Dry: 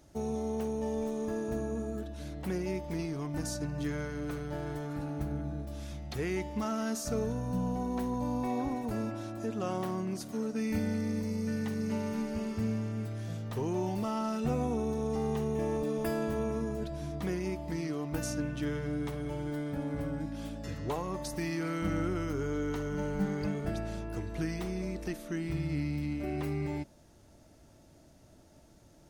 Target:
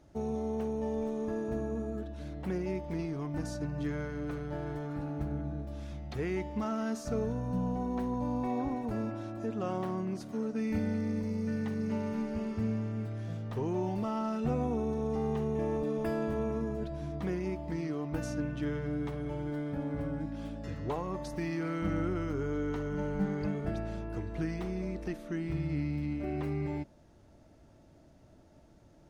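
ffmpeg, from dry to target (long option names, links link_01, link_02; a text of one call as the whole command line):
ffmpeg -i in.wav -af "lowpass=frequency=2400:poles=1" out.wav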